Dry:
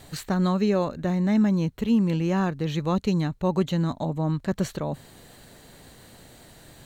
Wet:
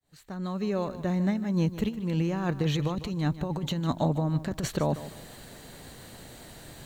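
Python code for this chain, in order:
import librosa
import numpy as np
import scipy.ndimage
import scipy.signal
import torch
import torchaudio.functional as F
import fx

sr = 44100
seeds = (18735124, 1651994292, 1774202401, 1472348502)

y = fx.fade_in_head(x, sr, length_s=2.11)
y = fx.over_compress(y, sr, threshold_db=-26.0, ratio=-0.5)
y = fx.echo_crushed(y, sr, ms=152, feedback_pct=35, bits=9, wet_db=-14)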